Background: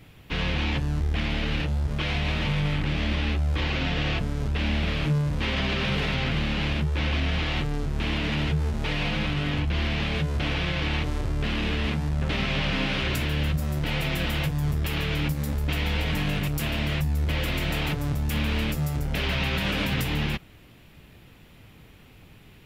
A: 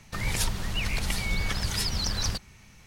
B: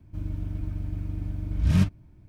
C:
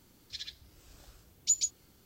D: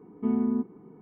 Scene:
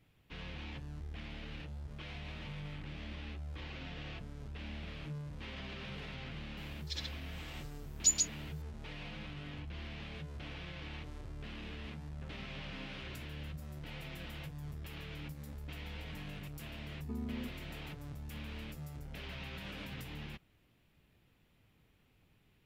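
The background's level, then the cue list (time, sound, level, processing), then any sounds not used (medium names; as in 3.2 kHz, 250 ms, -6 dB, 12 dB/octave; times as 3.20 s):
background -19 dB
6.57 s: add C -0.5 dB
16.86 s: add D -11.5 dB + compression, threshold -26 dBFS
not used: A, B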